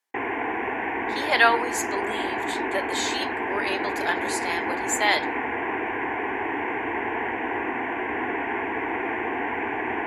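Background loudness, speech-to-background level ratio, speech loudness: -27.5 LUFS, 1.5 dB, -26.0 LUFS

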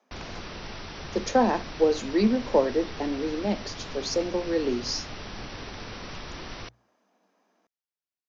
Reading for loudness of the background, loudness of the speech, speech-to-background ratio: -39.0 LUFS, -27.0 LUFS, 12.0 dB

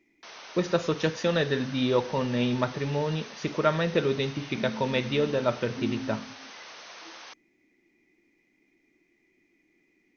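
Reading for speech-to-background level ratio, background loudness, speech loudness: 15.5 dB, -43.5 LUFS, -28.0 LUFS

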